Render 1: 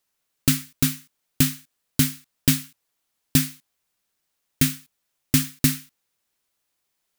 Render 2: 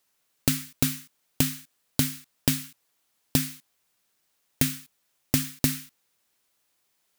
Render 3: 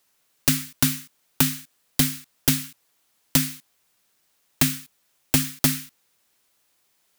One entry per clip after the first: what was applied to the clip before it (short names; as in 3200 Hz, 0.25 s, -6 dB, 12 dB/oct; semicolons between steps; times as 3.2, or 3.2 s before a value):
compressor 6:1, threshold -23 dBFS, peak gain reduction 10.5 dB; low shelf 72 Hz -7 dB; gain +4 dB
wrapped overs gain 12 dB; gain +5 dB